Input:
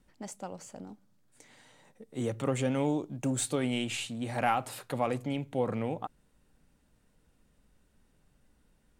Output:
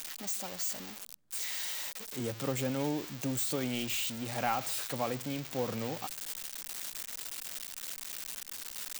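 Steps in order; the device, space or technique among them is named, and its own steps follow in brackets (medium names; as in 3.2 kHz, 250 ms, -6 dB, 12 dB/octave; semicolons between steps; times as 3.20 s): budget class-D amplifier (dead-time distortion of 0.052 ms; zero-crossing glitches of -20 dBFS); trim -4 dB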